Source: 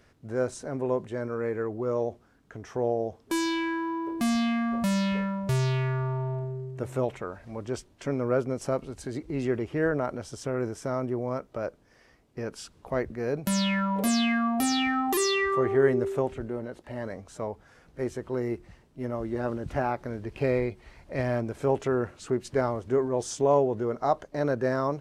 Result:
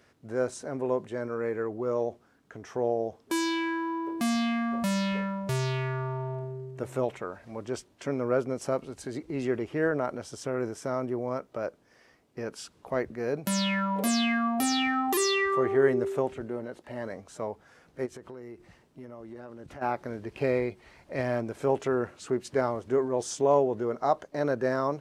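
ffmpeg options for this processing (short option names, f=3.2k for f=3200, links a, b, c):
-filter_complex "[0:a]asplit=3[a][b][c];[a]afade=t=out:st=18.05:d=0.02[d];[b]acompressor=threshold=-38dB:ratio=8:attack=3.2:release=140:knee=1:detection=peak,afade=t=in:st=18.05:d=0.02,afade=t=out:st=19.81:d=0.02[e];[c]afade=t=in:st=19.81:d=0.02[f];[d][e][f]amix=inputs=3:normalize=0,highpass=f=110:p=1,lowshelf=f=140:g=-4"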